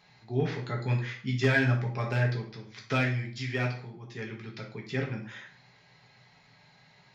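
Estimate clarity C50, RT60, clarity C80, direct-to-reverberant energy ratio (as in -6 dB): 7.5 dB, 0.45 s, 12.5 dB, -0.5 dB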